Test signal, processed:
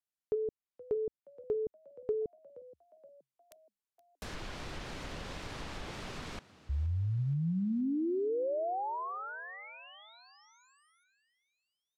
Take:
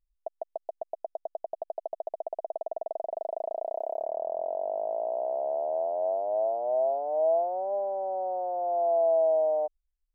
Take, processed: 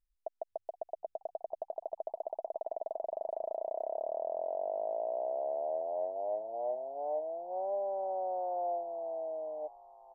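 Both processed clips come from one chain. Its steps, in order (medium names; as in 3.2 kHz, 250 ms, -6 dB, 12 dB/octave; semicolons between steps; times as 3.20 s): low-pass that closes with the level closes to 350 Hz, closed at -23.5 dBFS; frequency-shifting echo 473 ms, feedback 52%, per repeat +66 Hz, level -19 dB; trim -4 dB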